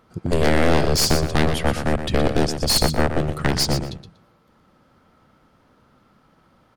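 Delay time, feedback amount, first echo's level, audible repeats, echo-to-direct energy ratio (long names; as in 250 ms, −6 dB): 120 ms, 16%, −9.0 dB, 2, −9.0 dB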